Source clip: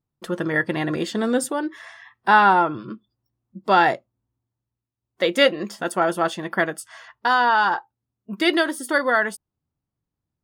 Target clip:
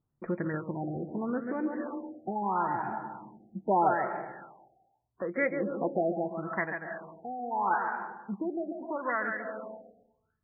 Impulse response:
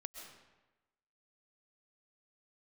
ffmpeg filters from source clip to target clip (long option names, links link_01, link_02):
-filter_complex "[0:a]asplit=2[link_01][link_02];[1:a]atrim=start_sample=2205,adelay=139[link_03];[link_02][link_03]afir=irnorm=-1:irlink=0,volume=-3.5dB[link_04];[link_01][link_04]amix=inputs=2:normalize=0,acompressor=threshold=-36dB:ratio=1.5,aphaser=in_gain=1:out_gain=1:delay=1.2:decay=0.45:speed=0.51:type=sinusoidal,afftfilt=real='re*lt(b*sr/1024,780*pow(2500/780,0.5+0.5*sin(2*PI*0.78*pts/sr)))':imag='im*lt(b*sr/1024,780*pow(2500/780,0.5+0.5*sin(2*PI*0.78*pts/sr)))':win_size=1024:overlap=0.75,volume=-3.5dB"